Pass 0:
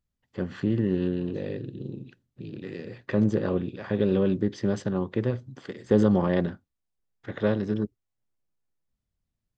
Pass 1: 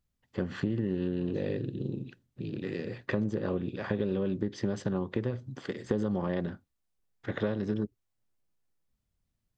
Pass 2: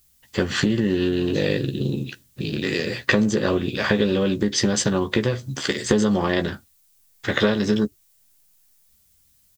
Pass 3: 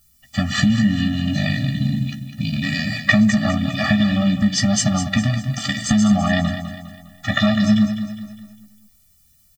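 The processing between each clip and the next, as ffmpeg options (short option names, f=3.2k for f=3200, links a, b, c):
-af "acompressor=threshold=-28dB:ratio=10,volume=2dB"
-filter_complex "[0:a]equalizer=f=68:t=o:w=0.77:g=3.5,asplit=2[a][b];[b]adelay=14,volume=-7dB[c];[a][c]amix=inputs=2:normalize=0,crystalizer=i=8:c=0,volume=8.5dB"
-filter_complex "[0:a]asplit=2[a][b];[b]aecho=0:1:203|406|609|812|1015:0.316|0.139|0.0612|0.0269|0.0119[c];[a][c]amix=inputs=2:normalize=0,afftfilt=real='re*eq(mod(floor(b*sr/1024/280),2),0)':imag='im*eq(mod(floor(b*sr/1024/280),2),0)':win_size=1024:overlap=0.75,volume=6dB"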